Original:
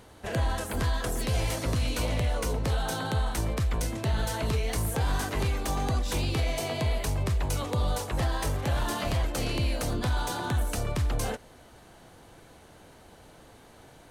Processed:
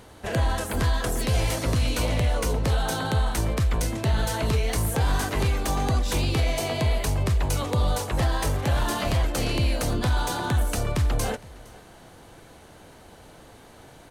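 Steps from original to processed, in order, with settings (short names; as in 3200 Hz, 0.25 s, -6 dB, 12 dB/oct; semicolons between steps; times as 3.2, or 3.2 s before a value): echo 0.462 s -23 dB; gain +4 dB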